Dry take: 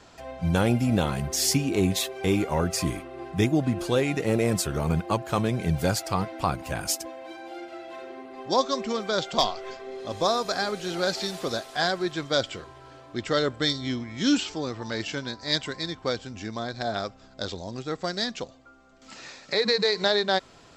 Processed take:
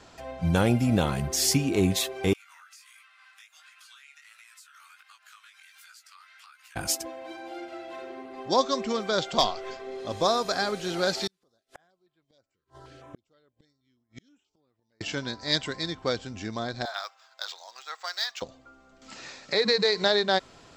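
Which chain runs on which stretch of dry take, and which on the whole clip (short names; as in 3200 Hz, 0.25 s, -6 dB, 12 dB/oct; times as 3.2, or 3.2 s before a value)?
2.33–6.76 elliptic high-pass 1300 Hz, stop band 70 dB + compressor 8:1, threshold -46 dBFS + chorus 1.4 Hz, delay 16 ms, depth 5.7 ms
11.27–15.01 flipped gate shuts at -28 dBFS, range -41 dB + stepped notch 6.3 Hz 700–6100 Hz
16.85–18.42 median filter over 3 samples + HPF 870 Hz 24 dB/oct
whole clip: dry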